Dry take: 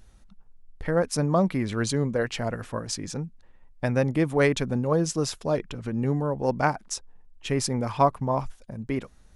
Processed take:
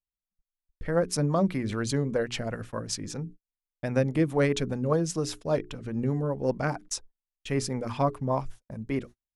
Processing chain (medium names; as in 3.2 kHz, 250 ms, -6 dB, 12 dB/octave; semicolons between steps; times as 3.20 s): hum notches 60/120/180/240/300/360/420 Hz; gate -40 dBFS, range -44 dB; rotary cabinet horn 5 Hz